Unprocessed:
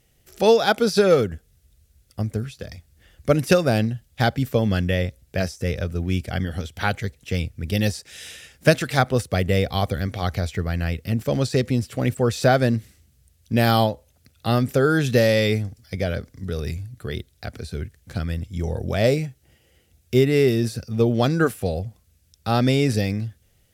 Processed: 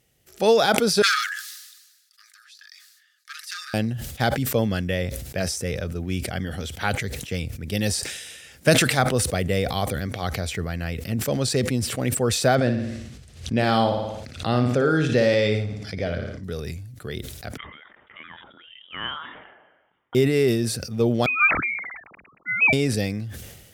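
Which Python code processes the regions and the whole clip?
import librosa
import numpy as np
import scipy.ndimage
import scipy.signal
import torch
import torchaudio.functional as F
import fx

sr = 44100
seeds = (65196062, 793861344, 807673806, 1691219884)

y = fx.chain(x, sr, fx.clip_hard(threshold_db=-16.0),
    fx.cheby_ripple_highpass(hz=1200.0, ripple_db=9), at=(1.02, 3.74))
y = fx.chain(y, sr, fx.air_absorb(metres=89.0),
    fx.room_flutter(wall_m=9.8, rt60_s=0.45),
    fx.pre_swell(db_per_s=110.0), at=(12.55, 16.44))
y = fx.chain(y, sr, fx.highpass(hz=1200.0, slope=12),
    fx.freq_invert(carrier_hz=3600), at=(17.57, 20.15))
y = fx.chain(y, sr, fx.sine_speech(),
    fx.freq_invert(carrier_hz=2800), at=(21.26, 22.73))
y = fx.highpass(y, sr, hz=110.0, slope=6)
y = fx.dynamic_eq(y, sr, hz=8800.0, q=4.3, threshold_db=-55.0, ratio=4.0, max_db=5)
y = fx.sustainer(y, sr, db_per_s=47.0)
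y = y * librosa.db_to_amplitude(-2.0)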